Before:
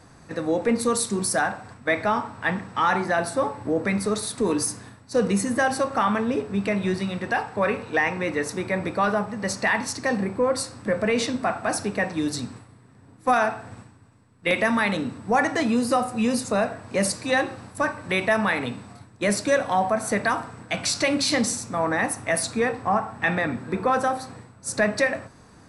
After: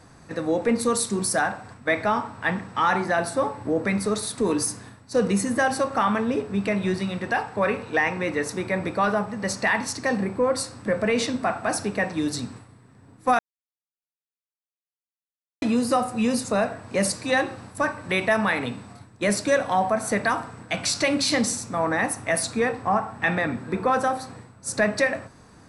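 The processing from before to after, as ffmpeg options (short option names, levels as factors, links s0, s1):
-filter_complex "[0:a]asplit=3[s0][s1][s2];[s0]atrim=end=13.39,asetpts=PTS-STARTPTS,afade=t=out:st=13.386:d=0.004:c=hsin[s3];[s1]atrim=start=13.39:end=15.62,asetpts=PTS-STARTPTS,volume=0[s4];[s2]atrim=start=15.62,asetpts=PTS-STARTPTS,afade=t=in:d=0.004:c=hsin[s5];[s3][s4][s5]concat=n=3:v=0:a=1"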